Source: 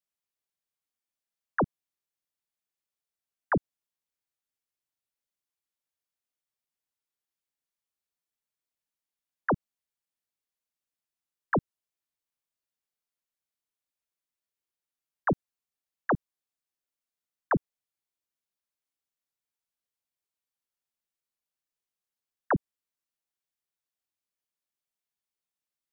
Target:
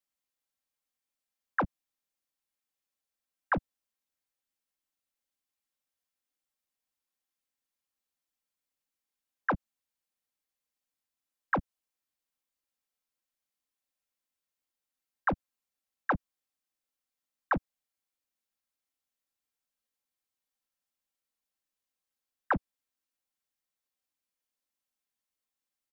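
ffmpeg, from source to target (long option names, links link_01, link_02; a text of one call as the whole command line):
ffmpeg -i in.wav -filter_complex "[0:a]aecho=1:1:3.8:0.47,acrossover=split=120|840[link_01][link_02][link_03];[link_02]asoftclip=type=tanh:threshold=-29.5dB[link_04];[link_01][link_04][link_03]amix=inputs=3:normalize=0" out.wav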